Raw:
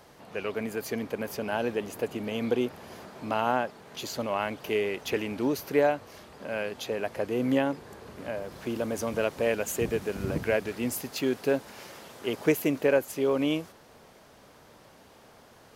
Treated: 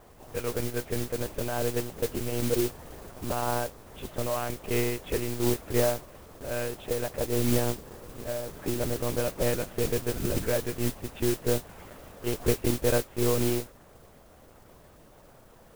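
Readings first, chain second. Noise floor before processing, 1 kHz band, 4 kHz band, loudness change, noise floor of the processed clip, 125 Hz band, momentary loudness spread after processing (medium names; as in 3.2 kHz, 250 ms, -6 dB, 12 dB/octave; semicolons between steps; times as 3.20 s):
-55 dBFS, -3.0 dB, +1.0 dB, 0.0 dB, -54 dBFS, +7.0 dB, 12 LU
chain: in parallel at +2 dB: peak limiter -20 dBFS, peak gain reduction 9 dB; on the sum: low-pass 1 kHz 6 dB/octave; band-stop 780 Hz; monotone LPC vocoder at 8 kHz 120 Hz; modulation noise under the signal 10 dB; trim -4.5 dB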